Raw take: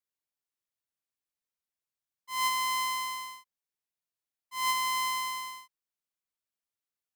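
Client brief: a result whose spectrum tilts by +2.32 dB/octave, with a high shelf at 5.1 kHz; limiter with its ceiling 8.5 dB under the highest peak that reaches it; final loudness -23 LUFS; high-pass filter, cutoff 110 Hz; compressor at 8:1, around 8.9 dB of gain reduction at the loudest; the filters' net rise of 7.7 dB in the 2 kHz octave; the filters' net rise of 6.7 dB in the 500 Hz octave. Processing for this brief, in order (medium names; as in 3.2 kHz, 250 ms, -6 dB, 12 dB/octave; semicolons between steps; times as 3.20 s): high-pass 110 Hz; peaking EQ 500 Hz +8.5 dB; peaking EQ 2 kHz +6.5 dB; treble shelf 5.1 kHz +7 dB; compression 8:1, threshold -29 dBFS; trim +15.5 dB; peak limiter -15.5 dBFS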